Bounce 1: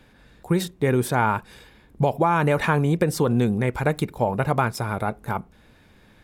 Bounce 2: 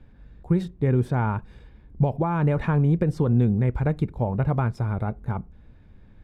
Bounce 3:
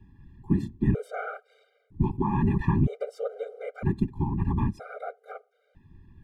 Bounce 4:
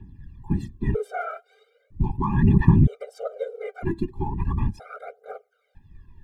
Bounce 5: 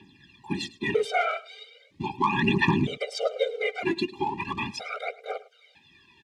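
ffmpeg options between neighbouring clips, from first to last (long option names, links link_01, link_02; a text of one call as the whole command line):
ffmpeg -i in.wav -af "aemphasis=mode=reproduction:type=riaa,volume=-8dB" out.wav
ffmpeg -i in.wav -af "afftfilt=real='hypot(re,im)*cos(2*PI*random(0))':imag='hypot(re,im)*sin(2*PI*random(1))':win_size=512:overlap=0.75,afftfilt=real='re*gt(sin(2*PI*0.52*pts/sr)*(1-2*mod(floor(b*sr/1024/400),2)),0)':imag='im*gt(sin(2*PI*0.52*pts/sr)*(1-2*mod(floor(b*sr/1024/400),2)),0)':win_size=1024:overlap=0.75,volume=4.5dB" out.wav
ffmpeg -i in.wav -af "aphaser=in_gain=1:out_gain=1:delay=3.1:decay=0.68:speed=0.38:type=triangular" out.wav
ffmpeg -i in.wav -af "aexciter=amount=13.3:drive=3.6:freq=2300,highpass=370,lowpass=2900,aecho=1:1:105:0.106,volume=5dB" out.wav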